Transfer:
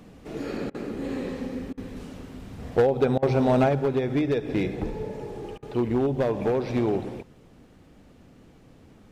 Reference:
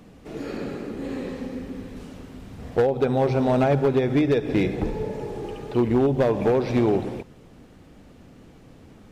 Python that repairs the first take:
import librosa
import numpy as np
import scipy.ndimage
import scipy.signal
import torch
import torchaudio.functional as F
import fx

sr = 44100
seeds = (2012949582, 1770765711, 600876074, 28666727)

y = fx.fix_interpolate(x, sr, at_s=(0.7, 1.73, 3.18, 5.58), length_ms=44.0)
y = fx.fix_level(y, sr, at_s=3.69, step_db=4.0)